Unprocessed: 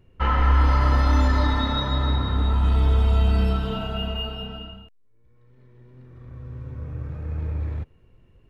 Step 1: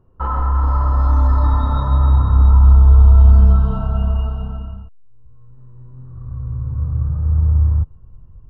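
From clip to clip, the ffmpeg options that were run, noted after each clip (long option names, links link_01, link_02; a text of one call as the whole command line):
ffmpeg -i in.wav -af "highshelf=frequency=1600:width_type=q:width=3:gain=-11.5,alimiter=limit=-13.5dB:level=0:latency=1:release=34,asubboost=boost=6.5:cutoff=140" out.wav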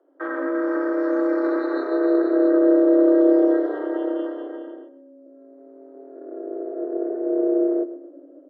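ffmpeg -i in.wav -filter_complex "[0:a]tremolo=f=290:d=0.947,afreqshift=270,asplit=2[link_01][link_02];[link_02]adelay=127,lowpass=frequency=2400:poles=1,volume=-13.5dB,asplit=2[link_03][link_04];[link_04]adelay=127,lowpass=frequency=2400:poles=1,volume=0.41,asplit=2[link_05][link_06];[link_06]adelay=127,lowpass=frequency=2400:poles=1,volume=0.41,asplit=2[link_07][link_08];[link_08]adelay=127,lowpass=frequency=2400:poles=1,volume=0.41[link_09];[link_01][link_03][link_05][link_07][link_09]amix=inputs=5:normalize=0,volume=-4dB" out.wav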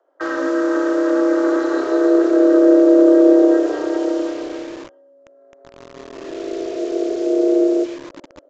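ffmpeg -i in.wav -filter_complex "[0:a]acrossover=split=490|880|1400[link_01][link_02][link_03][link_04];[link_01]acrusher=bits=6:mix=0:aa=0.000001[link_05];[link_05][link_02][link_03][link_04]amix=inputs=4:normalize=0,aresample=16000,aresample=44100,volume=5dB" out.wav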